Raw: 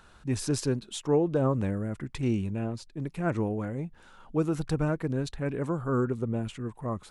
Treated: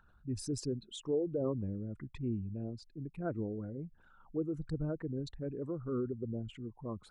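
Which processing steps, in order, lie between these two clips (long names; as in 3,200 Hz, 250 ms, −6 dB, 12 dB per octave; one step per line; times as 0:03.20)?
spectral envelope exaggerated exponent 2
level −8.5 dB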